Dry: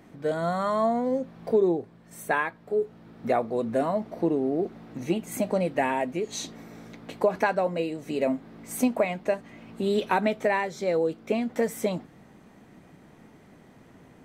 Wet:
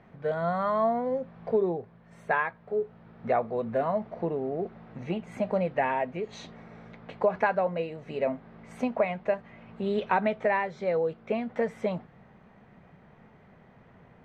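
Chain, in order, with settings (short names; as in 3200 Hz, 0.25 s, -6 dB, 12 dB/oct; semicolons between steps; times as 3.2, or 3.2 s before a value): LPF 2400 Hz 12 dB/oct; bell 300 Hz -13.5 dB 0.5 oct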